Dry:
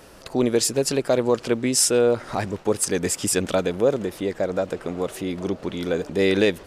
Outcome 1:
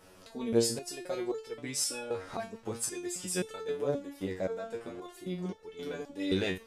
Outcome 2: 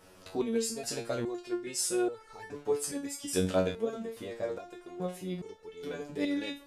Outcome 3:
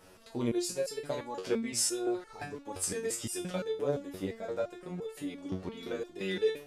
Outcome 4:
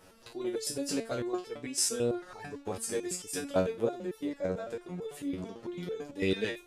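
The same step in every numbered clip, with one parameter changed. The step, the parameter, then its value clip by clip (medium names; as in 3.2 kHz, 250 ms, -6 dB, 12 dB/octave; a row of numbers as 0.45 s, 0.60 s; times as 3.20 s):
resonator arpeggio, rate: 3.8 Hz, 2.4 Hz, 5.8 Hz, 9 Hz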